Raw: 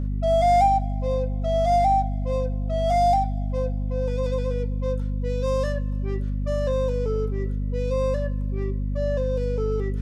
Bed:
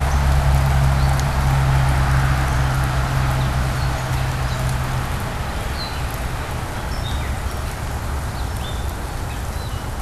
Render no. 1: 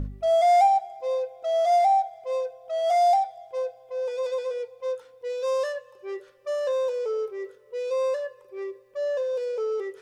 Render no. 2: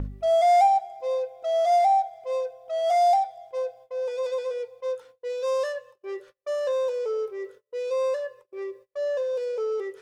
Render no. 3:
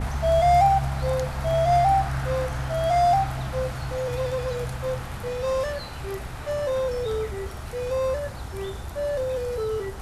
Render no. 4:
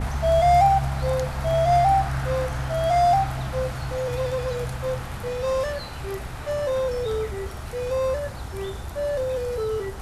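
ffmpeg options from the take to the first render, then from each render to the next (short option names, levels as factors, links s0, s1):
-af "bandreject=f=50:t=h:w=4,bandreject=f=100:t=h:w=4,bandreject=f=150:t=h:w=4,bandreject=f=200:t=h:w=4,bandreject=f=250:t=h:w=4"
-af "agate=range=0.0282:threshold=0.00447:ratio=16:detection=peak"
-filter_complex "[1:a]volume=0.282[s0];[0:a][s0]amix=inputs=2:normalize=0"
-af "volume=1.12"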